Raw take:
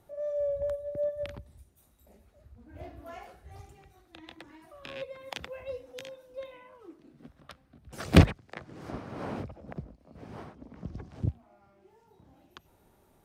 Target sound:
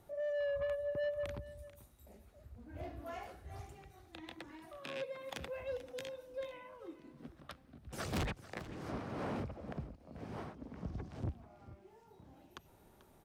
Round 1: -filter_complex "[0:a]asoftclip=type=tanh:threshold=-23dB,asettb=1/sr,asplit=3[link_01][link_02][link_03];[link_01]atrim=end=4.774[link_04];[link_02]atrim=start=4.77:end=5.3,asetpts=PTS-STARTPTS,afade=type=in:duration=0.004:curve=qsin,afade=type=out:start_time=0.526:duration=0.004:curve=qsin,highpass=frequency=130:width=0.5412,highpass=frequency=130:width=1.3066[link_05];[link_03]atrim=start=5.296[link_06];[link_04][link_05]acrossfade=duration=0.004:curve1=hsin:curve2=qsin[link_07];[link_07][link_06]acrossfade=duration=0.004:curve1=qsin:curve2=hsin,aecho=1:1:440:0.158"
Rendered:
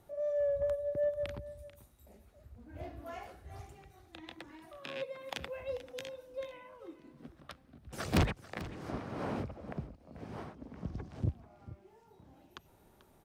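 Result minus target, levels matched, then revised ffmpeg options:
soft clipping: distortion −4 dB
-filter_complex "[0:a]asoftclip=type=tanh:threshold=-33.5dB,asettb=1/sr,asplit=3[link_01][link_02][link_03];[link_01]atrim=end=4.774[link_04];[link_02]atrim=start=4.77:end=5.3,asetpts=PTS-STARTPTS,afade=type=in:duration=0.004:curve=qsin,afade=type=out:start_time=0.526:duration=0.004:curve=qsin,highpass=frequency=130:width=0.5412,highpass=frequency=130:width=1.3066[link_05];[link_03]atrim=start=5.296[link_06];[link_04][link_05]acrossfade=duration=0.004:curve1=hsin:curve2=qsin[link_07];[link_07][link_06]acrossfade=duration=0.004:curve1=qsin:curve2=hsin,aecho=1:1:440:0.158"

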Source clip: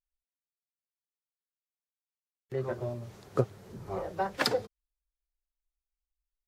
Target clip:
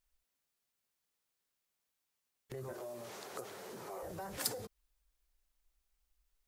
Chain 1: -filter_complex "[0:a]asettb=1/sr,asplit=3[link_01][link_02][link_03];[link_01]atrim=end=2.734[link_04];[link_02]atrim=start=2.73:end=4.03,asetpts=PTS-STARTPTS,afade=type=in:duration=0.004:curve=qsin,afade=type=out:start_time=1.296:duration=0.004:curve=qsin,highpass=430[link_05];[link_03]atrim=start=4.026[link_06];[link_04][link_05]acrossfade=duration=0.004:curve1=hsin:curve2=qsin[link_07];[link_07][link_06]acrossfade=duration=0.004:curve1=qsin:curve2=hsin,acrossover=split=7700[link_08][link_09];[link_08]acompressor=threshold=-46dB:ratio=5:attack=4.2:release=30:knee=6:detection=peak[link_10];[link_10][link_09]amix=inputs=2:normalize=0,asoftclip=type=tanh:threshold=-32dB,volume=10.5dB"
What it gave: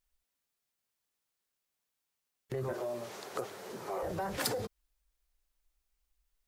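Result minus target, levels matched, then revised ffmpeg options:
downward compressor: peak gain reduction −9 dB
-filter_complex "[0:a]asettb=1/sr,asplit=3[link_01][link_02][link_03];[link_01]atrim=end=2.734[link_04];[link_02]atrim=start=2.73:end=4.03,asetpts=PTS-STARTPTS,afade=type=in:duration=0.004:curve=qsin,afade=type=out:start_time=1.296:duration=0.004:curve=qsin,highpass=430[link_05];[link_03]atrim=start=4.026[link_06];[link_04][link_05]acrossfade=duration=0.004:curve1=hsin:curve2=qsin[link_07];[link_07][link_06]acrossfade=duration=0.004:curve1=qsin:curve2=hsin,acrossover=split=7700[link_08][link_09];[link_08]acompressor=threshold=-57dB:ratio=5:attack=4.2:release=30:knee=6:detection=peak[link_10];[link_10][link_09]amix=inputs=2:normalize=0,asoftclip=type=tanh:threshold=-32dB,volume=10.5dB"

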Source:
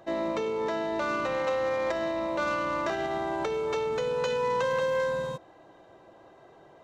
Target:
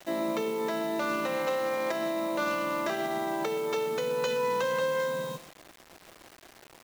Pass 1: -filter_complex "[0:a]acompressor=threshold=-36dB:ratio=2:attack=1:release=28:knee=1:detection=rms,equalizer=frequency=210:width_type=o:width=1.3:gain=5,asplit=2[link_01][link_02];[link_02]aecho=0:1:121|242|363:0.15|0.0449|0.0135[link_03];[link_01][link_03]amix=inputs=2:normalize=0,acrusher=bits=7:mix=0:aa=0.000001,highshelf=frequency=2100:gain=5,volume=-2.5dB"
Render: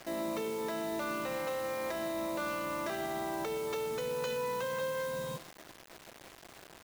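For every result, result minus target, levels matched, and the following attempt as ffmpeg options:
downward compressor: peak gain reduction +8.5 dB; 125 Hz band +3.5 dB
-filter_complex "[0:a]equalizer=frequency=210:width_type=o:width=1.3:gain=5,asplit=2[link_01][link_02];[link_02]aecho=0:1:121|242|363:0.15|0.0449|0.0135[link_03];[link_01][link_03]amix=inputs=2:normalize=0,acrusher=bits=7:mix=0:aa=0.000001,highshelf=frequency=2100:gain=5,volume=-2.5dB"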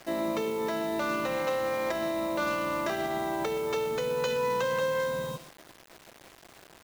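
125 Hz band +3.0 dB
-filter_complex "[0:a]highpass=frequency=150:width=0.5412,highpass=frequency=150:width=1.3066,equalizer=frequency=210:width_type=o:width=1.3:gain=5,asplit=2[link_01][link_02];[link_02]aecho=0:1:121|242|363:0.15|0.0449|0.0135[link_03];[link_01][link_03]amix=inputs=2:normalize=0,acrusher=bits=7:mix=0:aa=0.000001,highshelf=frequency=2100:gain=5,volume=-2.5dB"

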